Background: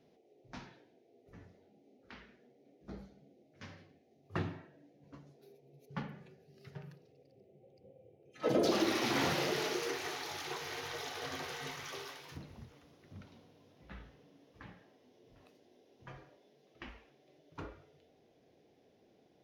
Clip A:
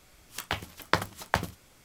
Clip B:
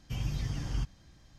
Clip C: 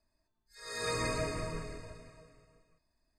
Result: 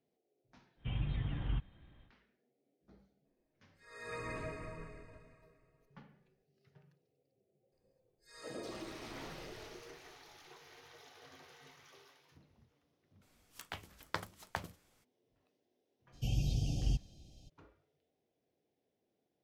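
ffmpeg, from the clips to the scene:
-filter_complex "[2:a]asplit=2[a][b];[3:a]asplit=2[c][d];[0:a]volume=-16dB[e];[a]aresample=8000,aresample=44100[f];[c]highshelf=f=3.3k:t=q:w=1.5:g=-8.5[g];[d]acompressor=threshold=-42dB:ratio=6:attack=3.2:release=140:knee=1:detection=peak[h];[1:a]bandreject=f=60:t=h:w=6,bandreject=f=120:t=h:w=6,bandreject=f=180:t=h:w=6,bandreject=f=240:t=h:w=6,bandreject=f=300:t=h:w=6,bandreject=f=360:t=h:w=6,bandreject=f=420:t=h:w=6,bandreject=f=480:t=h:w=6,bandreject=f=540:t=h:w=6,bandreject=f=600:t=h:w=6[i];[b]asuperstop=centerf=1400:order=20:qfactor=0.83[j];[f]atrim=end=1.38,asetpts=PTS-STARTPTS,volume=-3dB,afade=t=in:d=0.1,afade=t=out:st=1.28:d=0.1,adelay=750[k];[g]atrim=end=3.18,asetpts=PTS-STARTPTS,volume=-9dB,afade=t=in:d=0.004:c=hsin,afade=t=out:st=3.176:d=0.004:c=hsin,adelay=143325S[l];[h]atrim=end=3.18,asetpts=PTS-STARTPTS,volume=-7.5dB,afade=t=in:d=0.004:c=hsin,afade=t=out:st=3.176:d=0.004:c=hsin,adelay=7720[m];[i]atrim=end=1.84,asetpts=PTS-STARTPTS,volume=-13.5dB,afade=t=in:d=0.02,afade=t=out:st=1.82:d=0.02,adelay=13210[n];[j]atrim=end=1.38,asetpts=PTS-STARTPTS,afade=t=in:d=0.02,afade=t=out:st=1.36:d=0.02,adelay=16120[o];[e][k][l][m][n][o]amix=inputs=6:normalize=0"

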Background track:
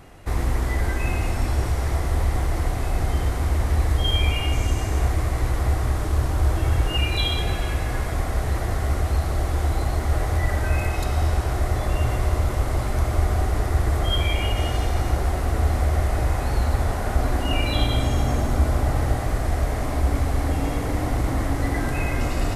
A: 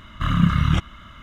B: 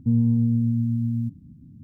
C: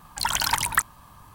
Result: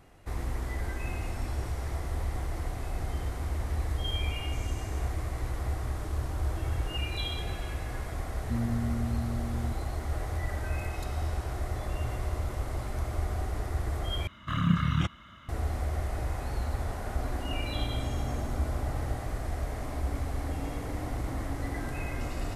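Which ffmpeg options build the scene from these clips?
-filter_complex "[0:a]volume=-10.5dB[a];[1:a]highpass=74[b];[a]asplit=2[c][d];[c]atrim=end=14.274[e];[b]atrim=end=1.22,asetpts=PTS-STARTPTS,volume=-7dB[f];[d]atrim=start=15.486[g];[2:a]atrim=end=1.83,asetpts=PTS-STARTPTS,volume=-11.5dB,afade=t=in:d=0.004:c=hsin,afade=t=out:st=1.826:d=0.004:c=hsin,adelay=8440[h];[e][f]acrossfade=d=0.004:c1=hsin:c2=hsin[i];[i][g]acrossfade=d=0.004:c1=hsin:c2=hsin[j];[j][h]amix=inputs=2:normalize=0"

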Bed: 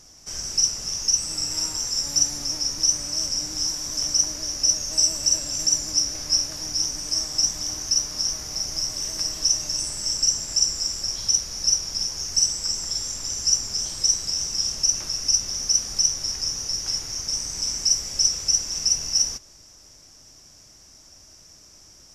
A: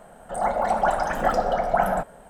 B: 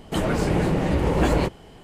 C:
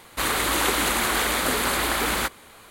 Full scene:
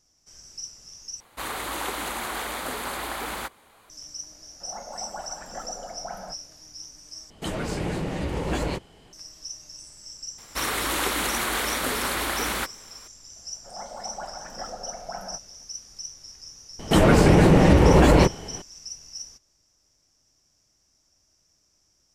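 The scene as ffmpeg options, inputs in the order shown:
-filter_complex "[3:a]asplit=2[a][b];[1:a]asplit=2[c][d];[2:a]asplit=2[e][f];[0:a]volume=-17dB[g];[a]equalizer=f=810:t=o:w=1.1:g=5.5[h];[e]equalizer=f=5.7k:w=0.44:g=6.5[i];[f]alimiter=level_in=12.5dB:limit=-1dB:release=50:level=0:latency=1[j];[g]asplit=3[k][l][m];[k]atrim=end=1.204[n];[h]atrim=end=2.7,asetpts=PTS-STARTPTS,volume=-10dB[o];[l]atrim=start=3.896:end=7.304[p];[i]atrim=end=1.83,asetpts=PTS-STARTPTS,volume=-7.5dB[q];[m]atrim=start=9.126[r];[c]atrim=end=2.29,asetpts=PTS-STARTPTS,volume=-16dB,afade=t=in:d=0.004:c=hsin,afade=t=out:st=2.286:d=0.004:c=hsin,adelay=4310[s];[b]atrim=end=2.7,asetpts=PTS-STARTPTS,volume=-3.5dB,afade=t=in:d=0.004:c=hsin,afade=t=out:st=2.696:d=0.004:c=hsin,adelay=10380[t];[d]atrim=end=2.29,asetpts=PTS-STARTPTS,volume=-15.5dB,afade=t=in:d=0.004:c=hsin,afade=t=out:st=2.286:d=0.004:c=hsin,adelay=13350[u];[j]atrim=end=1.83,asetpts=PTS-STARTPTS,volume=-5dB,afade=t=in:d=0.004:c=hsin,afade=t=out:st=1.826:d=0.004:c=hsin,adelay=16790[v];[n][o]acrossfade=d=0.004:c1=hsin:c2=hsin[w];[w][p]acrossfade=d=0.004:c1=hsin:c2=hsin[x];[x][q]acrossfade=d=0.004:c1=hsin:c2=hsin[y];[y][r]acrossfade=d=0.004:c1=hsin:c2=hsin[z];[z][s][t][u][v]amix=inputs=5:normalize=0"

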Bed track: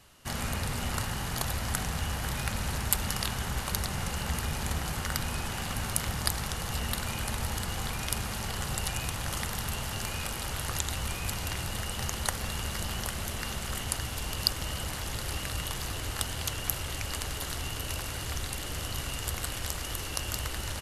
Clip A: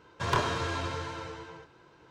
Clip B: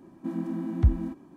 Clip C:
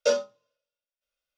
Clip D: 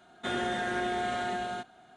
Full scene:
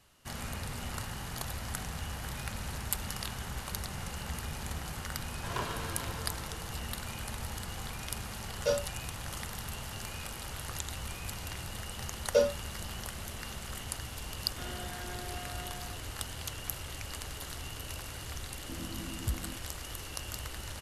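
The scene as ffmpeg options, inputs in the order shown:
-filter_complex "[3:a]asplit=2[a][b];[0:a]volume=-6.5dB[c];[b]tiltshelf=f=710:g=4.5[d];[1:a]atrim=end=2.1,asetpts=PTS-STARTPTS,volume=-9dB,afade=t=in:d=0.004:c=hsin,afade=t=out:st=2.096:d=0.004:c=hsin,adelay=5230[e];[a]atrim=end=1.37,asetpts=PTS-STARTPTS,volume=-5.5dB,afade=t=in:d=0.1,afade=t=out:st=1.27:d=0.1,adelay=8600[f];[d]atrim=end=1.37,asetpts=PTS-STARTPTS,volume=-3dB,afade=t=in:d=0.004:c=hsin,afade=t=out:st=1.366:d=0.004:c=hsin,adelay=12290[g];[4:a]atrim=end=1.96,asetpts=PTS-STARTPTS,volume=-14dB,afade=t=in:d=0.004:c=hsin,afade=t=out:st=1.956:d=0.004:c=hsin,adelay=14330[h];[2:a]atrim=end=1.36,asetpts=PTS-STARTPTS,volume=-13dB,afade=t=in:d=0.004:c=hsin,afade=t=out:st=1.356:d=0.004:c=hsin,adelay=813204S[i];[c][e][f][g][h][i]amix=inputs=6:normalize=0"

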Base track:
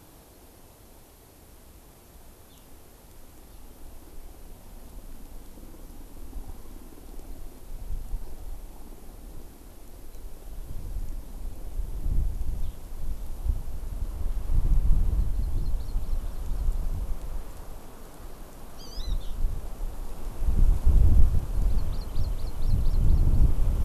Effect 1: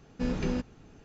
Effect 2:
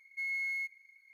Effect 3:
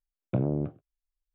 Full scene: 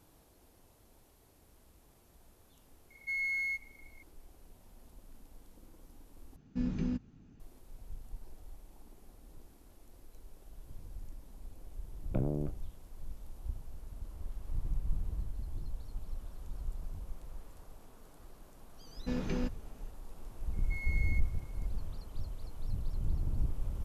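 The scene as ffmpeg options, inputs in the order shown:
-filter_complex "[2:a]asplit=2[a][b];[1:a]asplit=2[c][d];[0:a]volume=-12dB[e];[a]acontrast=55[f];[c]lowshelf=f=340:t=q:w=1.5:g=8.5[g];[e]asplit=2[h][i];[h]atrim=end=6.364[j];[g]atrim=end=1.04,asetpts=PTS-STARTPTS,volume=-12.5dB[k];[i]atrim=start=7.396[l];[f]atrim=end=1.13,asetpts=PTS-STARTPTS,volume=-5dB,afade=t=in:d=0.004:c=hsin,afade=t=out:st=1.126:d=0.004:c=hsin,adelay=2900[m];[3:a]atrim=end=1.34,asetpts=PTS-STARTPTS,volume=-6.5dB,afade=t=in:d=0.004:c=hsin,afade=t=out:st=1.336:d=0.004:c=hsin,adelay=11810[n];[d]atrim=end=1.04,asetpts=PTS-STARTPTS,volume=-5dB,afade=t=in:d=0.004:c=hsin,afade=t=out:st=1.036:d=0.004:c=hsin,adelay=18870[o];[b]atrim=end=1.13,asetpts=PTS-STARTPTS,volume=-7.5dB,afade=t=in:d=0.004:c=hsin,afade=t=out:st=1.126:d=0.004:c=hsin,adelay=20530[p];[j][k]acrossfade=d=0.004:c1=hsin:c2=hsin[q];[q][l]acrossfade=d=0.004:c1=hsin:c2=hsin[r];[r][m][n][o][p]amix=inputs=5:normalize=0"

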